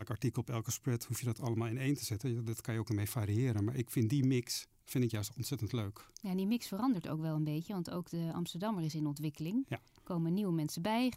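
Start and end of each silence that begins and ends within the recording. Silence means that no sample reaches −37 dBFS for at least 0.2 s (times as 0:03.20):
0:04.60–0:04.91
0:05.90–0:06.17
0:09.76–0:10.10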